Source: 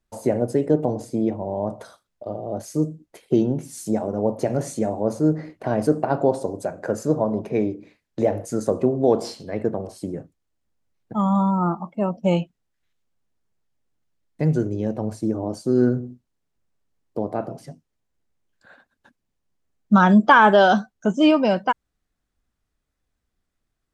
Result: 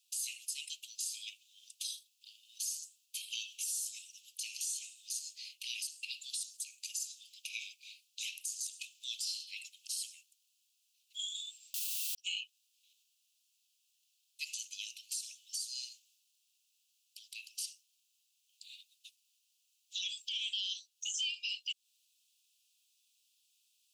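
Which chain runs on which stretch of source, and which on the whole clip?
11.74–12.15 running mean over 5 samples + requantised 6-bit, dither triangular
whole clip: steep high-pass 2600 Hz 96 dB/oct; compressor 10:1, threshold -46 dBFS; limiter -42 dBFS; gain +14.5 dB

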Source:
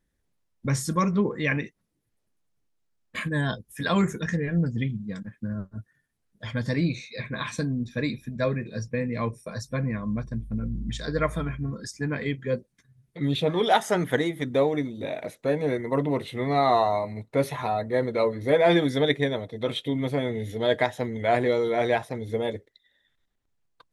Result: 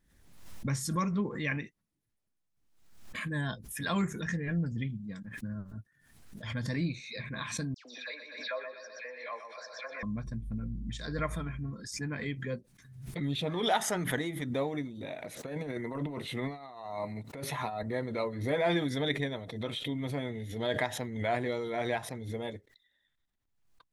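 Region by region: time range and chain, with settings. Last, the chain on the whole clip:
7.74–10.03 elliptic band-pass 550–5300 Hz, stop band 60 dB + dispersion lows, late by 0.114 s, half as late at 2600 Hz + feedback echo 0.122 s, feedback 43%, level -8 dB
15.37–17.83 HPF 110 Hz + negative-ratio compressor -28 dBFS, ratio -0.5
whole clip: bell 470 Hz -5 dB 0.81 oct; backwards sustainer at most 62 dB/s; gain -7 dB

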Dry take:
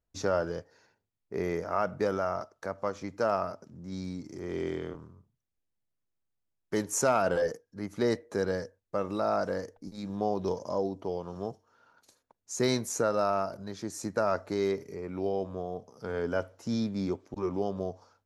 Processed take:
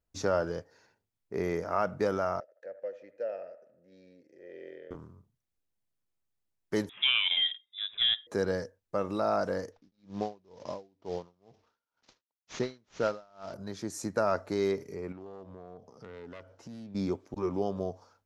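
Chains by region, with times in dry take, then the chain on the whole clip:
2.4–4.91 vowel filter e + band-limited delay 79 ms, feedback 50%, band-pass 1000 Hz, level -13 dB
6.89–8.27 bell 680 Hz -5.5 dB 0.24 oct + inverted band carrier 3700 Hz
9.72–13.54 CVSD 32 kbps + dB-linear tremolo 2.1 Hz, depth 33 dB
15.12–16.95 self-modulated delay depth 0.32 ms + compressor 4:1, threshold -44 dBFS + air absorption 73 m
whole clip: dry

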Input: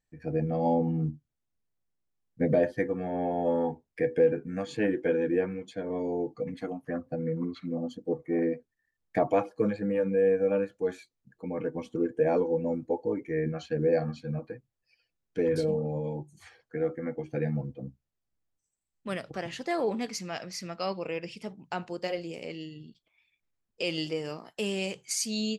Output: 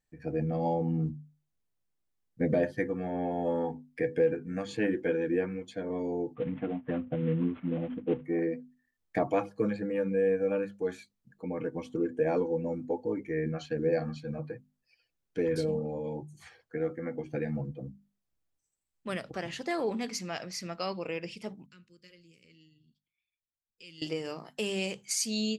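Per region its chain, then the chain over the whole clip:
6.35–8.25 CVSD 16 kbps + HPF 150 Hz 6 dB/oct + tilt -3 dB/oct
21.66–24.02 Butterworth band-stop 780 Hz, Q 1.4 + passive tone stack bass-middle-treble 6-0-2
whole clip: notches 50/100/150/200/250 Hz; dynamic EQ 620 Hz, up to -4 dB, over -35 dBFS, Q 1.1

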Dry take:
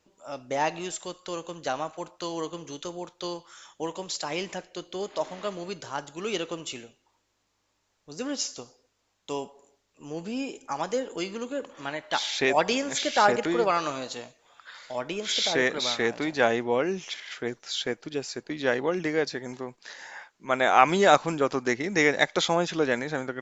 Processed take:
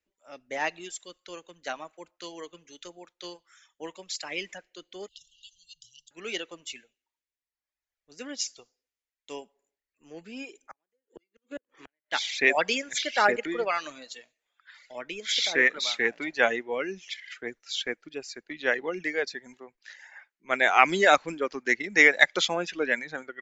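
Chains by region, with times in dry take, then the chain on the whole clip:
5.08–6.11 brick-wall FIR band-stop 150–2700 Hz + bell 330 Hz -7 dB 2.8 oct + three-band squash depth 70%
10.66–12.12 bell 370 Hz +6 dB 0.61 oct + flipped gate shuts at -22 dBFS, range -36 dB
whole clip: reverb removal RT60 1.4 s; ten-band EQ 125 Hz -11 dB, 1000 Hz -5 dB, 2000 Hz +9 dB; three-band expander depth 40%; gain -3 dB

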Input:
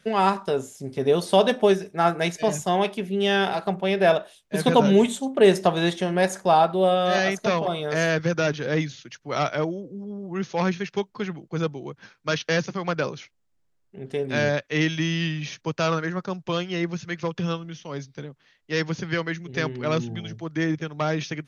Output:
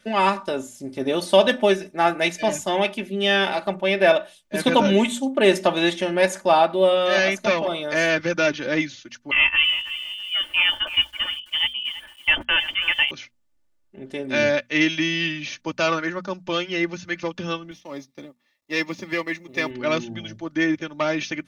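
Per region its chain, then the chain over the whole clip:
9.31–13.11 inverted band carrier 3300 Hz + lo-fi delay 0.328 s, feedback 35%, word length 7-bit, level -13 dB
17.71–19.71 G.711 law mismatch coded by A + notch comb 1500 Hz
whole clip: notches 60/120/180/240 Hz; comb 3.4 ms, depth 65%; dynamic EQ 2400 Hz, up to +6 dB, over -39 dBFS, Q 1.5

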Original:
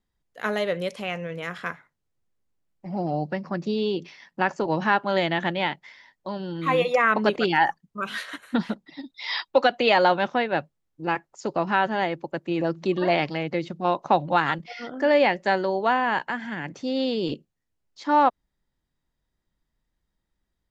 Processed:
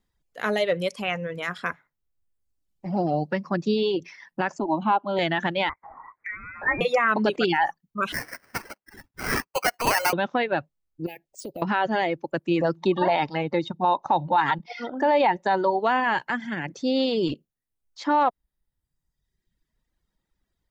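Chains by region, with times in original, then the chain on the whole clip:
4.58–5.19 running mean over 8 samples + fixed phaser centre 480 Hz, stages 6
5.69–6.81 HPF 920 Hz 24 dB/oct + inverted band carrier 2900 Hz + upward compressor, threshold -31 dBFS
8.12–10.13 HPF 1200 Hz + sample-rate reducer 3600 Hz
11.06–11.62 Chebyshev band-stop 610–2400 Hz + compressor 4:1, threshold -37 dBFS + careless resampling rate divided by 3×, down none, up hold
12.77–15.8 high shelf 3900 Hz -7.5 dB + small resonant body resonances 890/3700 Hz, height 14 dB, ringing for 25 ms
whole clip: reverb removal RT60 1.1 s; limiter -16 dBFS; gain +4 dB

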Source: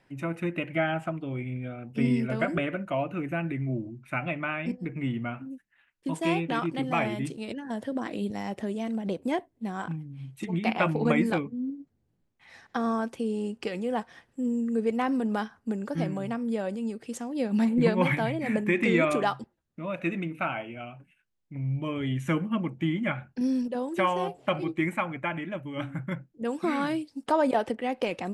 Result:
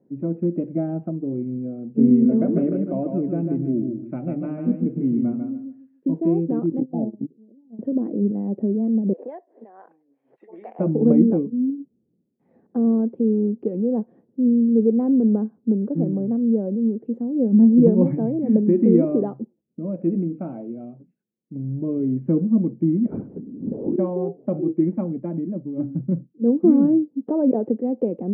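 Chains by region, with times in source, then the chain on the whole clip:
2.07–6.11 bell 4700 Hz +7.5 dB 2.9 oct + feedback echo 0.146 s, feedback 23%, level -5 dB
6.8–7.79 rippled Chebyshev low-pass 870 Hz, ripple 3 dB + gate -30 dBFS, range -24 dB
9.13–10.79 HPF 660 Hz 24 dB/oct + bell 1800 Hz +10.5 dB 0.36 oct + backwards sustainer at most 110 dB/s
23.06–23.96 zero-crossing step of -42.5 dBFS + negative-ratio compressor -33 dBFS, ratio -0.5 + LPC vocoder at 8 kHz whisper
24.97–27.21 bell 220 Hz +5 dB 2.1 oct + three-band expander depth 70%
whole clip: Chebyshev band-pass 200–470 Hz, order 2; low shelf 320 Hz +9.5 dB; gain +5 dB

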